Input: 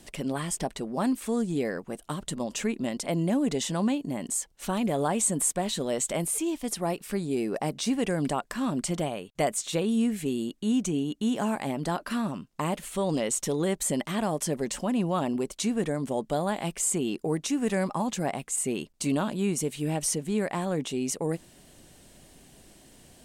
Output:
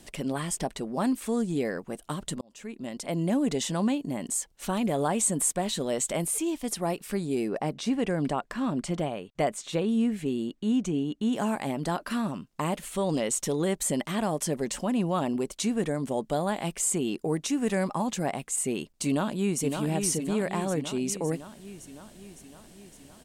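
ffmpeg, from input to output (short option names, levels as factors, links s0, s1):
-filter_complex "[0:a]asettb=1/sr,asplit=3[s0][s1][s2];[s0]atrim=end=7.484[s3];[s1]atrim=start=7.48:end=11.33,asetpts=PTS-STARTPTS,afade=t=in:d=0.004:c=qsin,afade=t=out:st=3.846:d=0.004:c=qsin,lowpass=f=3200:p=1[s4];[s2]atrim=start=11.326[s5];[s3][s4]acrossfade=d=0.004:c1=hsin:c2=qsin[s6];[s6][s5]acrossfade=d=0.004:c1=qsin:c2=hsin,asplit=2[s7][s8];[s8]afade=t=in:st=19.07:d=0.01,afade=t=out:st=19.62:d=0.01,aecho=0:1:560|1120|1680|2240|2800|3360|3920|4480|5040|5600:0.530884|0.345075|0.224299|0.145794|0.0947662|0.061598|0.0400387|0.0260252|0.0169164|0.0109956[s9];[s7][s9]amix=inputs=2:normalize=0,asplit=2[s10][s11];[s10]atrim=end=2.41,asetpts=PTS-STARTPTS,afade=t=out:st=2.406:d=0.004:c=hsin[s12];[s11]atrim=start=2.41,asetpts=PTS-STARTPTS,afade=t=in:d=0.92[s13];[s12][s13]concat=n=2:v=0:a=1"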